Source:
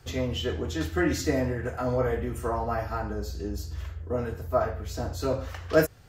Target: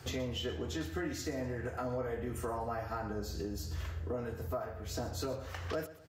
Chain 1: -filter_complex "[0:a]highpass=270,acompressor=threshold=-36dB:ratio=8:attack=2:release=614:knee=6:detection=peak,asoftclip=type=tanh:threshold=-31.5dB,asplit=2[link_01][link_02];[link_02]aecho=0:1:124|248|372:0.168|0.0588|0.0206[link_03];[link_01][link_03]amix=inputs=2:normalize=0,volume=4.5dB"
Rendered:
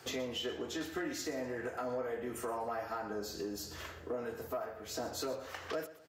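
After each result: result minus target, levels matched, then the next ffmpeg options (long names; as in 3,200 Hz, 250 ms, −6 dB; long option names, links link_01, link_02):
125 Hz band −12.0 dB; soft clipping: distortion +18 dB
-filter_complex "[0:a]highpass=79,acompressor=threshold=-36dB:ratio=8:attack=2:release=614:knee=6:detection=peak,asoftclip=type=tanh:threshold=-31.5dB,asplit=2[link_01][link_02];[link_02]aecho=0:1:124|248|372:0.168|0.0588|0.0206[link_03];[link_01][link_03]amix=inputs=2:normalize=0,volume=4.5dB"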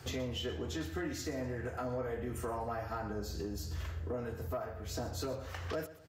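soft clipping: distortion +17 dB
-filter_complex "[0:a]highpass=79,acompressor=threshold=-36dB:ratio=8:attack=2:release=614:knee=6:detection=peak,asoftclip=type=tanh:threshold=-22dB,asplit=2[link_01][link_02];[link_02]aecho=0:1:124|248|372:0.168|0.0588|0.0206[link_03];[link_01][link_03]amix=inputs=2:normalize=0,volume=4.5dB"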